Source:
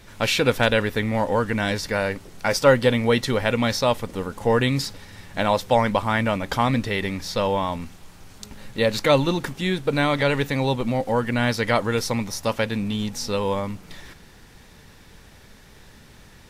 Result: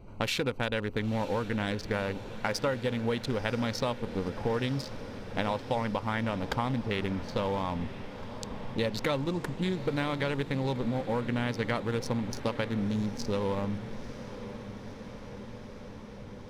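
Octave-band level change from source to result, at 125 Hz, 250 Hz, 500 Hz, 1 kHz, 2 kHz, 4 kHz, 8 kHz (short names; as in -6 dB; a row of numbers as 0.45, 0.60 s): -7.0, -7.0, -10.0, -10.0, -10.5, -10.0, -12.0 dB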